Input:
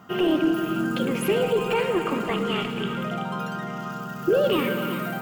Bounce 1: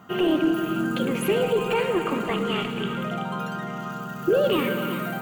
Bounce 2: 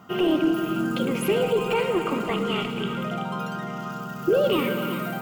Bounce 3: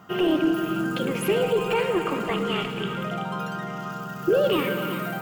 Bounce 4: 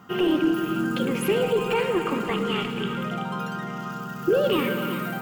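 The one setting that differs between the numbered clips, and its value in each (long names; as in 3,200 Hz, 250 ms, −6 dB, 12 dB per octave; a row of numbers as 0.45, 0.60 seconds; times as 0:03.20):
notch filter, centre frequency: 5,200, 1,700, 240, 650 Hertz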